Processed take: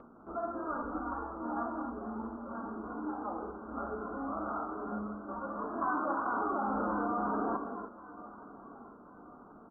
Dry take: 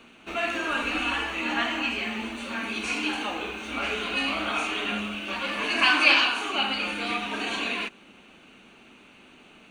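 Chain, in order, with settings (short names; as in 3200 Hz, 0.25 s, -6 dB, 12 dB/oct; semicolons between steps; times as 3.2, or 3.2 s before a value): steep low-pass 1400 Hz 96 dB/oct; upward compressor, threshold -43 dBFS; feedback echo 1.083 s, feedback 43%, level -13.5 dB; 6.26–7.57 fast leveller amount 100%; gain -5.5 dB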